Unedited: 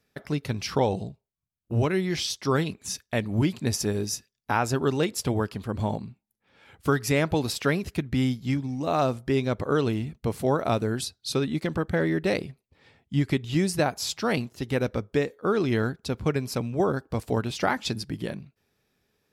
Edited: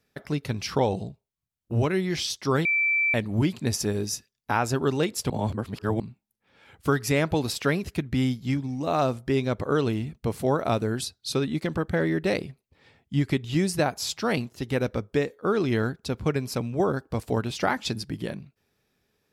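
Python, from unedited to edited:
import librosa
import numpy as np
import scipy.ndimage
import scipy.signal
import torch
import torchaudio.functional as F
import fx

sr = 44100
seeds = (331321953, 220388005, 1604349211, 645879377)

y = fx.edit(x, sr, fx.bleep(start_s=2.65, length_s=0.49, hz=2330.0, db=-20.0),
    fx.reverse_span(start_s=5.3, length_s=0.7), tone=tone)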